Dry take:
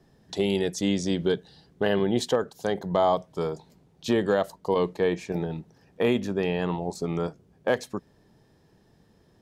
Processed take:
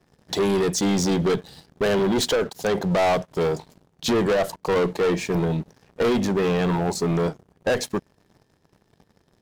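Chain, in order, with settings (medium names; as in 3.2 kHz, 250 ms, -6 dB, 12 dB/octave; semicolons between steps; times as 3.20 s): one-sided clip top -23 dBFS, bottom -16 dBFS; waveshaping leveller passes 3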